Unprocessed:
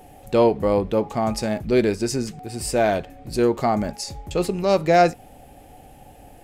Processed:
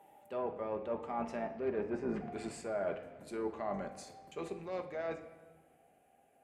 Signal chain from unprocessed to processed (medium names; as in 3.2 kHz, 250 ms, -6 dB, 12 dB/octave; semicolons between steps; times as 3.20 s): octave divider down 2 oct, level 0 dB; Doppler pass-by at 1.98 s, 23 m/s, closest 8.6 m; peaking EQ 4.8 kHz -14.5 dB 1.1 oct; low-pass that closes with the level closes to 1.5 kHz, closed at -22.5 dBFS; Chebyshev shaper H 8 -33 dB, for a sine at -9 dBFS; frequency weighting A; reverse; compression 10:1, threshold -37 dBFS, peak gain reduction 16 dB; reverse; reverberation RT60 1.4 s, pre-delay 5 ms, DRR 5.5 dB; trim +2.5 dB